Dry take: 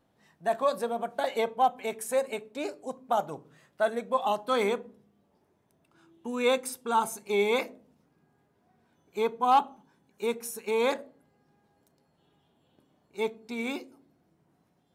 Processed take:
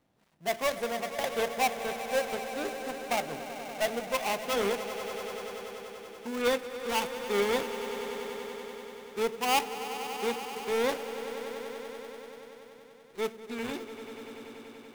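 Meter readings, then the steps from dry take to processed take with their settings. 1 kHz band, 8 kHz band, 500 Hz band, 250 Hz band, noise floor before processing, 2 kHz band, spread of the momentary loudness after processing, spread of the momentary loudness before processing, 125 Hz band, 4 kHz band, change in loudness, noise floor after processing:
−4.0 dB, +2.0 dB, −1.5 dB, −1.0 dB, −71 dBFS, +2.0 dB, 15 LU, 12 LU, can't be measured, +3.5 dB, −3.0 dB, −53 dBFS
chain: gap after every zero crossing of 0.29 ms
echo that builds up and dies away 96 ms, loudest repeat 5, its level −14.5 dB
level −1.5 dB

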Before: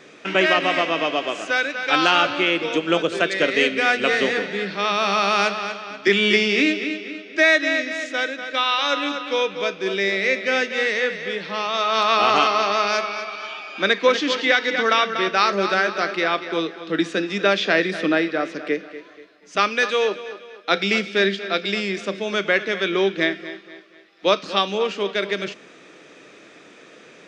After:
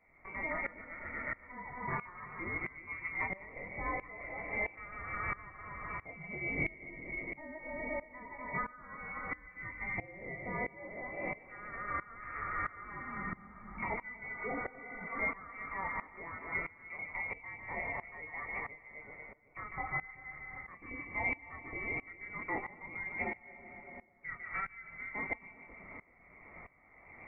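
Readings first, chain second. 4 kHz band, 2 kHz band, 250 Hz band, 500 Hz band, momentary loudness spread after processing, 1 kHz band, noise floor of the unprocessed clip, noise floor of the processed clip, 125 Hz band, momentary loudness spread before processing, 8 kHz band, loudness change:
below −40 dB, −17.0 dB, −22.0 dB, −25.0 dB, 12 LU, −19.0 dB, −47 dBFS, −60 dBFS, −11.5 dB, 10 LU, below −40 dB, −19.5 dB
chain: healed spectral selection 0:14.39–0:15.04, 510–1,600 Hz before
parametric band 820 Hz −8.5 dB 0.7 octaves
downward compressor 3 to 1, threshold −32 dBFS, peak gain reduction 14.5 dB
multi-voice chorus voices 4, 0.29 Hz, delay 22 ms, depth 4.2 ms
voice inversion scrambler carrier 2,500 Hz
echo with a time of its own for lows and highs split 680 Hz, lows 380 ms, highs 150 ms, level −8 dB
tremolo with a ramp in dB swelling 1.5 Hz, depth 20 dB
level +1.5 dB

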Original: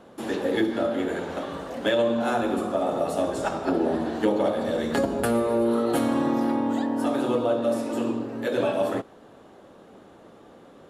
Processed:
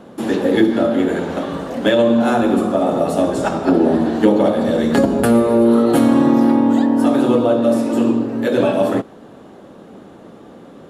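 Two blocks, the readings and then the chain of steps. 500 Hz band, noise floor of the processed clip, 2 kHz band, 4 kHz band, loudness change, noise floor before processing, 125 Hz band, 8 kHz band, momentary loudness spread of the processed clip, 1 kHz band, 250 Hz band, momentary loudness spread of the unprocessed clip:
+8.5 dB, −41 dBFS, +6.5 dB, +6.5 dB, +10.0 dB, −50 dBFS, +11.5 dB, +6.5 dB, 7 LU, +7.0 dB, +11.5 dB, 6 LU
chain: parametric band 200 Hz +6.5 dB 1.7 octaves
level +6.5 dB

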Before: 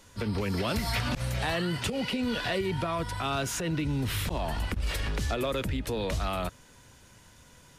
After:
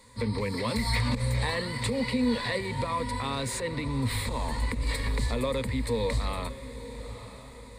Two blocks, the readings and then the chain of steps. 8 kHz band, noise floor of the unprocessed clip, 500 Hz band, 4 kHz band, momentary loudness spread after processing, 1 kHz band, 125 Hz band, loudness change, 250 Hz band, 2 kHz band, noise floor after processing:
0.0 dB, −56 dBFS, +1.0 dB, 0.0 dB, 14 LU, +0.5 dB, +1.5 dB, +1.0 dB, +1.5 dB, +0.5 dB, −46 dBFS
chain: EQ curve with evenly spaced ripples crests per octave 0.97, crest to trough 14 dB
on a send: feedback delay with all-pass diffusion 965 ms, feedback 43%, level −13 dB
on the sum: level −2 dB

